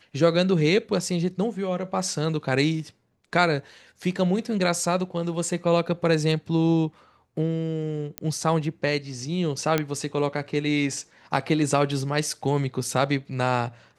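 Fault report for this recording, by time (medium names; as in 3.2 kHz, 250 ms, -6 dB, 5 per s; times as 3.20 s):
8.18 s: pop -11 dBFS
9.78 s: pop -8 dBFS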